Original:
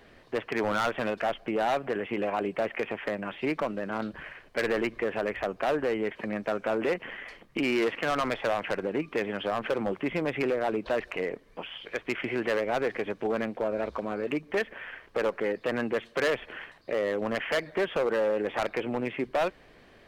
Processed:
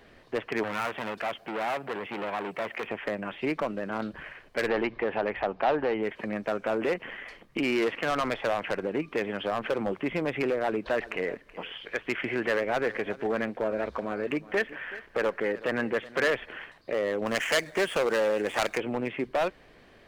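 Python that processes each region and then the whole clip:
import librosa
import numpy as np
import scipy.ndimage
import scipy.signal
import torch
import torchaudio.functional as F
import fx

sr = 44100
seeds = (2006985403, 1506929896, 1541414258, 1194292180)

y = fx.chain(x, sr, fx.highpass(hz=63.0, slope=12),
    fx.high_shelf(hz=8400.0, db=10.5),
    fx.transformer_sat(knee_hz=1700.0), at=(0.63, 2.87))
y = fx.chain(y, sr, fx.lowpass(hz=4700.0, slope=24),
    fx.peak_eq(hz=840.0, db=8.0, octaves=0.39),
    fx.hum_notches(base_hz=60, count=3), at=(4.68, 6.03))
y = fx.chain(y, sr, fx.peak_eq(hz=1700.0, db=4.0, octaves=0.55),
    fx.echo_single(ms=376, db=-18.0), at=(10.64, 16.51))
y = fx.chain(y, sr, fx.median_filter(points=9),
    fx.high_shelf(hz=2200.0, db=11.0), at=(17.26, 18.78))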